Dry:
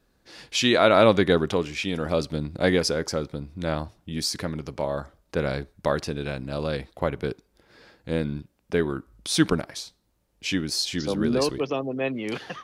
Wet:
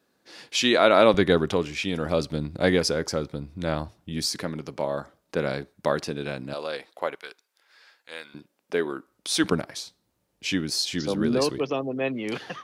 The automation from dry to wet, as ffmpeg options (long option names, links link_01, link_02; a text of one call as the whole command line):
ffmpeg -i in.wav -af "asetnsamples=nb_out_samples=441:pad=0,asendcmd='1.14 highpass f 59;4.25 highpass f 150;6.54 highpass f 510;7.15 highpass f 1200;8.34 highpass f 320;9.44 highpass f 94',highpass=200" out.wav